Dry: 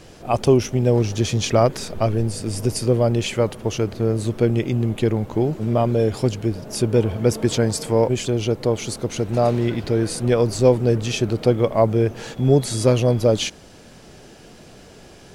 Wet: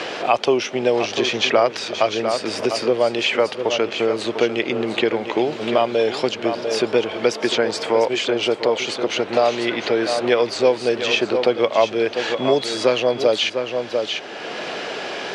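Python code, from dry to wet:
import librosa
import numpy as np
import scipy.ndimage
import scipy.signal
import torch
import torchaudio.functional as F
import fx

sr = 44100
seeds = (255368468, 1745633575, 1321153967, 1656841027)

p1 = fx.bandpass_edges(x, sr, low_hz=470.0, high_hz=4100.0)
p2 = fx.peak_eq(p1, sr, hz=3200.0, db=6.0, octaves=1.9)
p3 = p2 + fx.echo_single(p2, sr, ms=697, db=-11.0, dry=0)
p4 = fx.band_squash(p3, sr, depth_pct=70)
y = p4 * 10.0 ** (4.0 / 20.0)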